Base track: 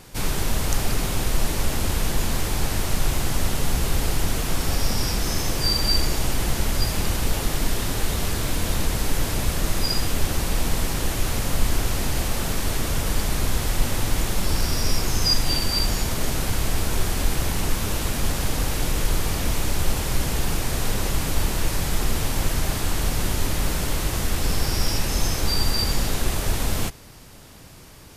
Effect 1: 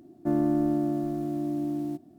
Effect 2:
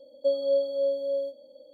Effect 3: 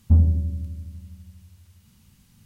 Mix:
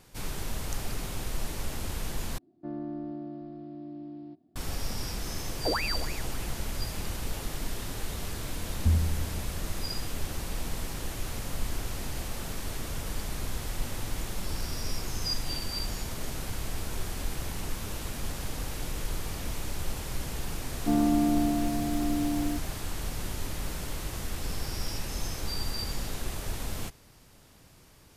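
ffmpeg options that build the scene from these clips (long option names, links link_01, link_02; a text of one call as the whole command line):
ffmpeg -i bed.wav -i cue0.wav -i cue1.wav -i cue2.wav -filter_complex "[1:a]asplit=2[link_01][link_02];[3:a]asplit=2[link_03][link_04];[0:a]volume=-11dB[link_05];[link_01]aresample=11025,aresample=44100[link_06];[link_03]aeval=exprs='val(0)*sin(2*PI*1500*n/s+1500*0.75/3.4*sin(2*PI*3.4*n/s))':channel_layout=same[link_07];[link_02]aecho=1:1:4.3:0.74[link_08];[link_05]asplit=2[link_09][link_10];[link_09]atrim=end=2.384[link_11];[link_06]atrim=end=2.18,asetpts=PTS-STARTPTS,volume=-12dB[link_12];[link_10]atrim=start=4.556[link_13];[link_07]atrim=end=2.45,asetpts=PTS-STARTPTS,volume=-13dB,afade=type=in:duration=0.004:curve=hsin,afade=type=out:start_time=2.446:duration=0.004:curve=hsin,adelay=5550[link_14];[link_04]atrim=end=2.45,asetpts=PTS-STARTPTS,volume=-8.5dB,afade=type=in:duration=0.004:curve=hsin,afade=type=out:start_time=2.446:duration=0.004:curve=hsin,adelay=8750[link_15];[link_08]atrim=end=2.18,asetpts=PTS-STARTPTS,volume=-1dB,afade=type=in:duration=0.004:curve=hsin,afade=type=out:start_time=2.176:duration=0.004:curve=hsin,adelay=20610[link_16];[link_11][link_12]acrossfade=duration=0.004:curve1=hsin:curve2=hsin[link_17];[link_17][link_13]acrossfade=duration=0.004:curve1=hsin:curve2=hsin[link_18];[link_18][link_14][link_15][link_16]amix=inputs=4:normalize=0" out.wav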